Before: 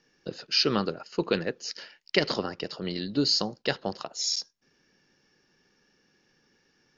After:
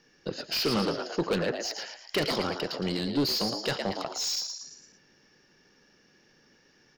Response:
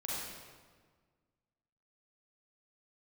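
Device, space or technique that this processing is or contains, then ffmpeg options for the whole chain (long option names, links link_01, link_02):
saturation between pre-emphasis and de-emphasis: -filter_complex "[0:a]asplit=6[link_01][link_02][link_03][link_04][link_05][link_06];[link_02]adelay=113,afreqshift=88,volume=-10.5dB[link_07];[link_03]adelay=226,afreqshift=176,volume=-17.1dB[link_08];[link_04]adelay=339,afreqshift=264,volume=-23.6dB[link_09];[link_05]adelay=452,afreqshift=352,volume=-30.2dB[link_10];[link_06]adelay=565,afreqshift=440,volume=-36.7dB[link_11];[link_01][link_07][link_08][link_09][link_10][link_11]amix=inputs=6:normalize=0,highshelf=frequency=3100:gain=9,asoftclip=type=tanh:threshold=-25dB,highshelf=frequency=3100:gain=-9,volume=4.5dB"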